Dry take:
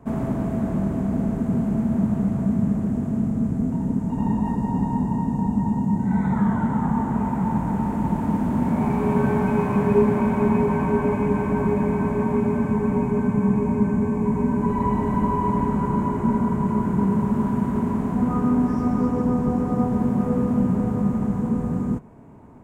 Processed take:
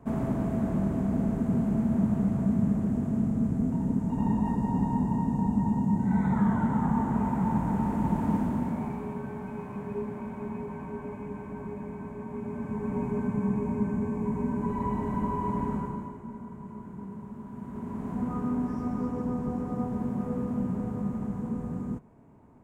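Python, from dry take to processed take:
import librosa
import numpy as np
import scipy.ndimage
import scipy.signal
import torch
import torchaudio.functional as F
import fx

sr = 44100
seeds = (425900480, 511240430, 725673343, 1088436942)

y = fx.gain(x, sr, db=fx.line((8.36, -4.0), (9.23, -16.5), (12.25, -16.5), (13.05, -8.0), (15.75, -8.0), (16.23, -20.0), (17.45, -20.0), (18.11, -9.5)))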